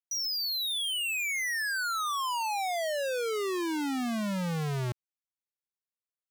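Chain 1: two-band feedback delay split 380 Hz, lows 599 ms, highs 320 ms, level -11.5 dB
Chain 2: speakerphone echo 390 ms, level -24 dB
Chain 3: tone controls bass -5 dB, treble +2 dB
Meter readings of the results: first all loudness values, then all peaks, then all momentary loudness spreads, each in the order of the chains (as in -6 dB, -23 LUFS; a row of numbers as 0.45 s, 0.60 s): -30.0 LUFS, -30.0 LUFS, -30.0 LUFS; -24.5 dBFS, -30.5 dBFS, -25.5 dBFS; 16 LU, 3 LU, 7 LU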